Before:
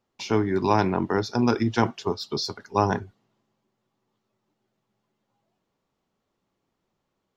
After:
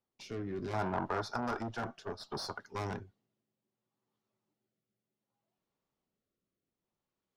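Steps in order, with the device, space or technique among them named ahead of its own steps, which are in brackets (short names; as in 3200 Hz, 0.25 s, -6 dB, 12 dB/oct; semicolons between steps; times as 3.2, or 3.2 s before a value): overdriven rotary cabinet (tube stage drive 25 dB, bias 0.5; rotary speaker horn 0.65 Hz); 0.73–2.6 band shelf 970 Hz +11.5 dB; gain -7.5 dB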